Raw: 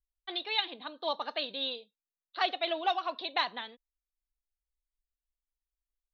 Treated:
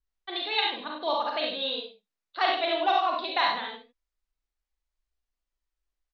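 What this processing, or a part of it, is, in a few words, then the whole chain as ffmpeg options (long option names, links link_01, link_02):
slapback doubling: -filter_complex "[0:a]lowpass=5400,equalizer=frequency=3200:width=1.5:gain=-2.5,aecho=1:1:52|68:0.531|0.596,asplit=3[link_01][link_02][link_03];[link_02]adelay=39,volume=-6dB[link_04];[link_03]adelay=92,volume=-10.5dB[link_05];[link_01][link_04][link_05]amix=inputs=3:normalize=0,volume=3.5dB"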